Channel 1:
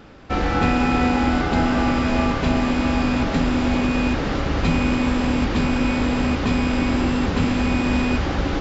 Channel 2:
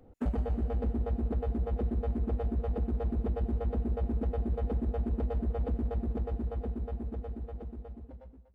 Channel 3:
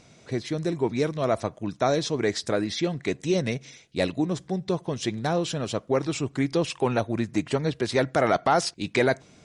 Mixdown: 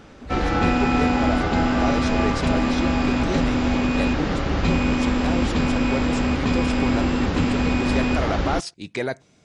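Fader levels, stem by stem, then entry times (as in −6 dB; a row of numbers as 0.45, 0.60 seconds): −1.0, −10.0, −4.5 decibels; 0.00, 0.00, 0.00 seconds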